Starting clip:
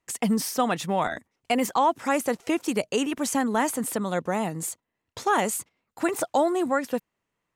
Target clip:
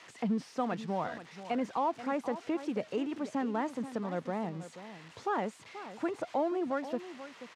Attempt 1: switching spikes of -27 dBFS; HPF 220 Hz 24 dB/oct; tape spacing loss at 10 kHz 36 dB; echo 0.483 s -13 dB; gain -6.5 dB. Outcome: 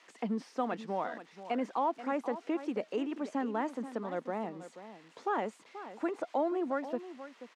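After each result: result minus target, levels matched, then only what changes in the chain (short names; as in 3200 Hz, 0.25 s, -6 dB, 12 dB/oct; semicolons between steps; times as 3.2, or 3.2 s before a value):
125 Hz band -6.0 dB; switching spikes: distortion -7 dB
change: HPF 87 Hz 24 dB/oct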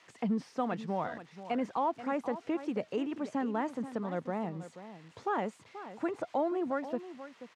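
switching spikes: distortion -7 dB
change: switching spikes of -19.5 dBFS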